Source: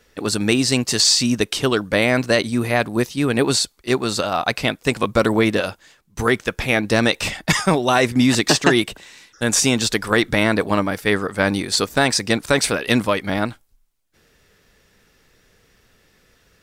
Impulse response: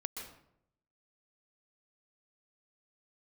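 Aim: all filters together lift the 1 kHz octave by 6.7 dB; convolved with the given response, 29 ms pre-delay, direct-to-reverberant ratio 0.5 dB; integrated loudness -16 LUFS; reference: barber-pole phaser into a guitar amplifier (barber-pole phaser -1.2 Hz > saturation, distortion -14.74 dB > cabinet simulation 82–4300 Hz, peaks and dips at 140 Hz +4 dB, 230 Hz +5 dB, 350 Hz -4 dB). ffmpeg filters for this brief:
-filter_complex "[0:a]equalizer=f=1000:t=o:g=9,asplit=2[s0][s1];[1:a]atrim=start_sample=2205,adelay=29[s2];[s1][s2]afir=irnorm=-1:irlink=0,volume=1[s3];[s0][s3]amix=inputs=2:normalize=0,asplit=2[s4][s5];[s5]afreqshift=-1.2[s6];[s4][s6]amix=inputs=2:normalize=1,asoftclip=threshold=0.355,highpass=82,equalizer=f=140:t=q:w=4:g=4,equalizer=f=230:t=q:w=4:g=5,equalizer=f=350:t=q:w=4:g=-4,lowpass=f=4300:w=0.5412,lowpass=f=4300:w=1.3066,volume=1.41"

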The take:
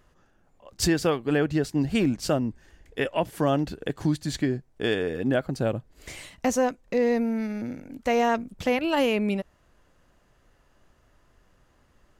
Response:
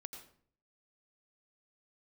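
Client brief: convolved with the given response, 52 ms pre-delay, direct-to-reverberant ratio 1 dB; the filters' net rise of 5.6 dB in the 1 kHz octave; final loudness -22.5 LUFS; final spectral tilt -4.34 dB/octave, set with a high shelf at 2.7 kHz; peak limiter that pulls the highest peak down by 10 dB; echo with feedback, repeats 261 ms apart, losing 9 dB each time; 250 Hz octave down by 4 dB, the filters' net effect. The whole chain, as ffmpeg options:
-filter_complex "[0:a]equalizer=f=250:t=o:g=-5.5,equalizer=f=1000:t=o:g=7.5,highshelf=f=2700:g=5.5,alimiter=limit=0.141:level=0:latency=1,aecho=1:1:261|522|783|1044:0.355|0.124|0.0435|0.0152,asplit=2[s0][s1];[1:a]atrim=start_sample=2205,adelay=52[s2];[s1][s2]afir=irnorm=-1:irlink=0,volume=1.5[s3];[s0][s3]amix=inputs=2:normalize=0,volume=1.5"

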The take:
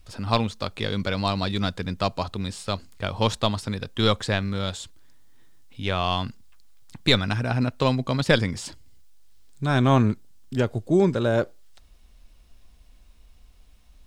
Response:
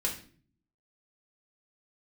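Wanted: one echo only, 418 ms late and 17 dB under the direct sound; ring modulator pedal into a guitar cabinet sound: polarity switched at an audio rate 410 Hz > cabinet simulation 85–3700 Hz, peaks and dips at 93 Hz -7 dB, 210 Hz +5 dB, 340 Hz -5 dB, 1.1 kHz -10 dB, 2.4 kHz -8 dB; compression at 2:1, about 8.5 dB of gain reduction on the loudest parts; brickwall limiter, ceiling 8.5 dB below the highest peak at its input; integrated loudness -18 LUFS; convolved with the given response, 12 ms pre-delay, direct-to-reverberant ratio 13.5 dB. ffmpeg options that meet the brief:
-filter_complex "[0:a]acompressor=threshold=0.0355:ratio=2,alimiter=limit=0.1:level=0:latency=1,aecho=1:1:418:0.141,asplit=2[s0][s1];[1:a]atrim=start_sample=2205,adelay=12[s2];[s1][s2]afir=irnorm=-1:irlink=0,volume=0.119[s3];[s0][s3]amix=inputs=2:normalize=0,aeval=exprs='val(0)*sgn(sin(2*PI*410*n/s))':c=same,highpass=85,equalizer=f=93:t=q:w=4:g=-7,equalizer=f=210:t=q:w=4:g=5,equalizer=f=340:t=q:w=4:g=-5,equalizer=f=1100:t=q:w=4:g=-10,equalizer=f=2400:t=q:w=4:g=-8,lowpass=f=3700:w=0.5412,lowpass=f=3700:w=1.3066,volume=6.68"

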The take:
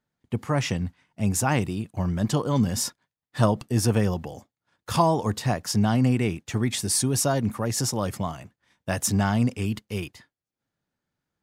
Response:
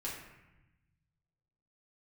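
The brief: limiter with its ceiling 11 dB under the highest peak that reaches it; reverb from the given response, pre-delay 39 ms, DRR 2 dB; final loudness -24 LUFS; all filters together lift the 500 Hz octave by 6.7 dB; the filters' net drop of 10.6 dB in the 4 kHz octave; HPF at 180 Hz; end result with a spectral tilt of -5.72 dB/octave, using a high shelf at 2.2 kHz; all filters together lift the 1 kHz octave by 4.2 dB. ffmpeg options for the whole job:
-filter_complex "[0:a]highpass=180,equalizer=f=500:t=o:g=8,equalizer=f=1000:t=o:g=4,highshelf=f=2200:g=-8,equalizer=f=4000:t=o:g=-6.5,alimiter=limit=0.224:level=0:latency=1,asplit=2[s0][s1];[1:a]atrim=start_sample=2205,adelay=39[s2];[s1][s2]afir=irnorm=-1:irlink=0,volume=0.708[s3];[s0][s3]amix=inputs=2:normalize=0"

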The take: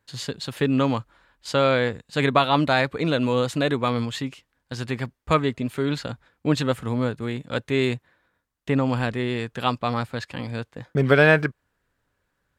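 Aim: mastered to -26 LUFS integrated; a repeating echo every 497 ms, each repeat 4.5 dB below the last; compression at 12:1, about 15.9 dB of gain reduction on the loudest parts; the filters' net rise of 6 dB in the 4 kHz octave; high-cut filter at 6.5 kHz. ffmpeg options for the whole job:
-af "lowpass=6500,equalizer=f=4000:t=o:g=7.5,acompressor=threshold=0.0447:ratio=12,aecho=1:1:497|994|1491|1988|2485|2982|3479|3976|4473:0.596|0.357|0.214|0.129|0.0772|0.0463|0.0278|0.0167|0.01,volume=1.78"

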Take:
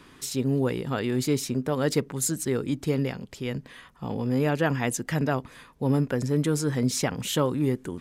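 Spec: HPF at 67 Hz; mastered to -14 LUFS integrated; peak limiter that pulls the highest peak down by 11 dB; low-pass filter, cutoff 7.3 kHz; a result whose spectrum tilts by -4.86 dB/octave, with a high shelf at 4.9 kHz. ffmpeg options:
-af "highpass=67,lowpass=7300,highshelf=f=4900:g=5.5,volume=7.5,alimiter=limit=0.631:level=0:latency=1"

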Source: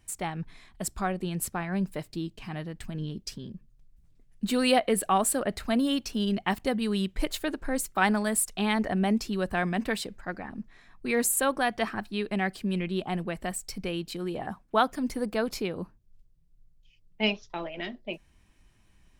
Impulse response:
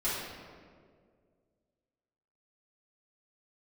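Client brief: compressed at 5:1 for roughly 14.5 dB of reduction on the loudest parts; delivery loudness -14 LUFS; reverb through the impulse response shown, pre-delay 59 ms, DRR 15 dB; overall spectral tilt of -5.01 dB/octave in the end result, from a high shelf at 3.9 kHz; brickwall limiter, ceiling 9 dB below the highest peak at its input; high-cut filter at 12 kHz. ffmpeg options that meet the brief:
-filter_complex "[0:a]lowpass=12000,highshelf=f=3900:g=-8.5,acompressor=threshold=0.0178:ratio=5,alimiter=level_in=2.37:limit=0.0631:level=0:latency=1,volume=0.422,asplit=2[s0][s1];[1:a]atrim=start_sample=2205,adelay=59[s2];[s1][s2]afir=irnorm=-1:irlink=0,volume=0.0708[s3];[s0][s3]amix=inputs=2:normalize=0,volume=25.1"

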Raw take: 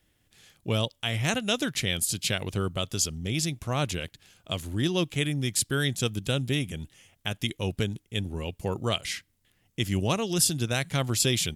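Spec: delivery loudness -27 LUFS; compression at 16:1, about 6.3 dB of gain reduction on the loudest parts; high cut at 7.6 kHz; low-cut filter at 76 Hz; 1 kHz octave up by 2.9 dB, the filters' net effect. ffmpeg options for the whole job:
-af "highpass=76,lowpass=7600,equalizer=f=1000:t=o:g=4,acompressor=threshold=0.0447:ratio=16,volume=2.11"

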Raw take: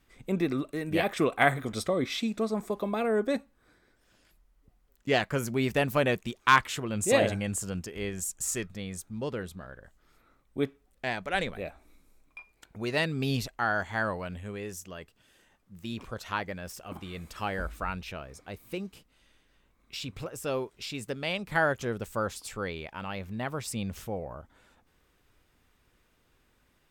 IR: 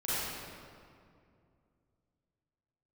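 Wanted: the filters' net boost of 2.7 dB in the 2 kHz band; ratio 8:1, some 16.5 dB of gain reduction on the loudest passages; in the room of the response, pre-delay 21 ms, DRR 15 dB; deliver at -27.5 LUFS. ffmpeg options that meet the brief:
-filter_complex "[0:a]equalizer=f=2000:t=o:g=3.5,acompressor=threshold=0.0251:ratio=8,asplit=2[s0][s1];[1:a]atrim=start_sample=2205,adelay=21[s2];[s1][s2]afir=irnorm=-1:irlink=0,volume=0.0708[s3];[s0][s3]amix=inputs=2:normalize=0,volume=3.16"

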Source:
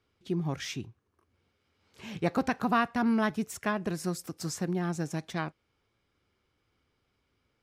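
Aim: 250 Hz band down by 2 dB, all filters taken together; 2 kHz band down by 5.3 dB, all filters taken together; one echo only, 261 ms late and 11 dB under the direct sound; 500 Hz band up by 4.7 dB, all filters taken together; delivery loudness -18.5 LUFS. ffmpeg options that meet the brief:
-af "equalizer=f=250:t=o:g=-4.5,equalizer=f=500:t=o:g=8,equalizer=f=2000:t=o:g=-8,aecho=1:1:261:0.282,volume=4.22"

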